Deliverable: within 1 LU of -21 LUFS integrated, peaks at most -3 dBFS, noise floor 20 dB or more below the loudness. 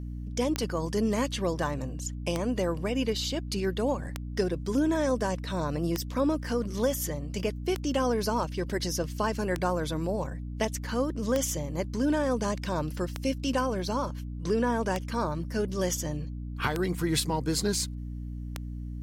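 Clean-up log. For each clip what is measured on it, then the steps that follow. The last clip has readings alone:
clicks found 11; hum 60 Hz; highest harmonic 300 Hz; hum level -34 dBFS; loudness -30.0 LUFS; peak level -11.0 dBFS; loudness target -21.0 LUFS
-> de-click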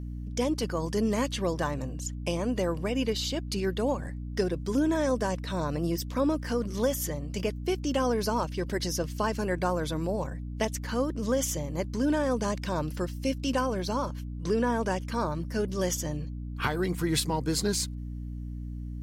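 clicks found 0; hum 60 Hz; highest harmonic 300 Hz; hum level -34 dBFS
-> hum notches 60/120/180/240/300 Hz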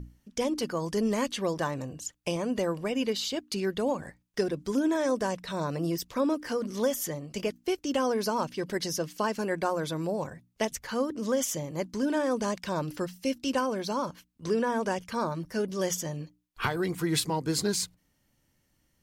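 hum not found; loudness -30.5 LUFS; peak level -15.0 dBFS; loudness target -21.0 LUFS
-> trim +9.5 dB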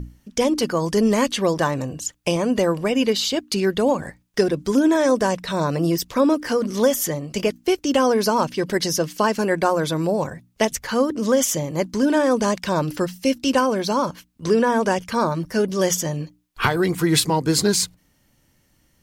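loudness -21.0 LUFS; peak level -5.5 dBFS; noise floor -63 dBFS

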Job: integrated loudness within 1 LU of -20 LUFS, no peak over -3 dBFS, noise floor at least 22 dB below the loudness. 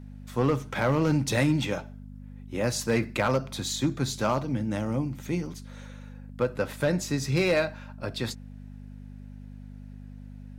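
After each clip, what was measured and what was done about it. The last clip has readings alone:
clipped samples 0.5%; clipping level -16.5 dBFS; hum 50 Hz; highest harmonic 250 Hz; hum level -40 dBFS; loudness -28.0 LUFS; peak level -16.5 dBFS; loudness target -20.0 LUFS
-> clip repair -16.5 dBFS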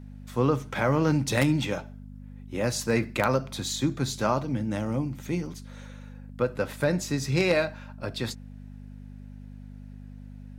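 clipped samples 0.0%; hum 50 Hz; highest harmonic 250 Hz; hum level -40 dBFS
-> de-hum 50 Hz, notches 5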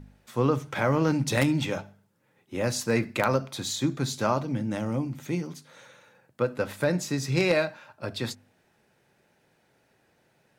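hum not found; loudness -28.0 LUFS; peak level -7.5 dBFS; loudness target -20.0 LUFS
-> trim +8 dB; peak limiter -3 dBFS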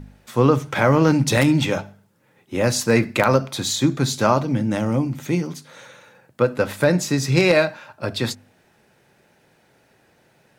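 loudness -20.0 LUFS; peak level -3.0 dBFS; noise floor -60 dBFS

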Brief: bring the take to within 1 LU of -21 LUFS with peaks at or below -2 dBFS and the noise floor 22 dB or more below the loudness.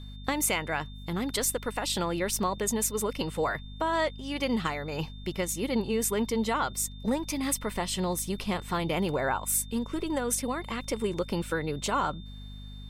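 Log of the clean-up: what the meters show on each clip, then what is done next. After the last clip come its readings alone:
hum 50 Hz; highest harmonic 250 Hz; hum level -40 dBFS; steady tone 3.6 kHz; tone level -51 dBFS; loudness -30.0 LUFS; peak level -13.0 dBFS; loudness target -21.0 LUFS
-> hum notches 50/100/150/200/250 Hz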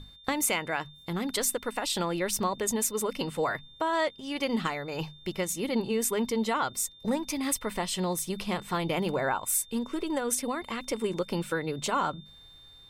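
hum not found; steady tone 3.6 kHz; tone level -51 dBFS
-> band-stop 3.6 kHz, Q 30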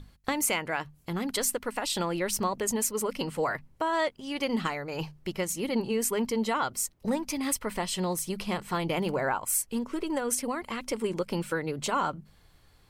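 steady tone not found; loudness -30.0 LUFS; peak level -12.5 dBFS; loudness target -21.0 LUFS
-> trim +9 dB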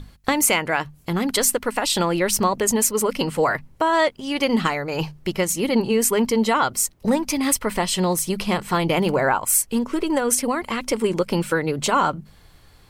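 loudness -21.0 LUFS; peak level -3.5 dBFS; noise floor -52 dBFS

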